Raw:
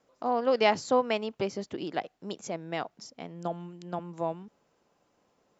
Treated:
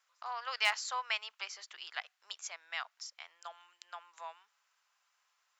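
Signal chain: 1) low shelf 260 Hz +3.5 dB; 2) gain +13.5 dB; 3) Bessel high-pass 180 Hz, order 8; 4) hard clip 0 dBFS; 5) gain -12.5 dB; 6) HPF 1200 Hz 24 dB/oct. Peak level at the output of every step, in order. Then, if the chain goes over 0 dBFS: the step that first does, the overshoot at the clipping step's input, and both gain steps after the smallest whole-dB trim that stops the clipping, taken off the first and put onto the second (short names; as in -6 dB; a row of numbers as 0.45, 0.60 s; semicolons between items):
-9.5, +4.0, +4.0, 0.0, -12.5, -14.5 dBFS; step 2, 4.0 dB; step 2 +9.5 dB, step 5 -8.5 dB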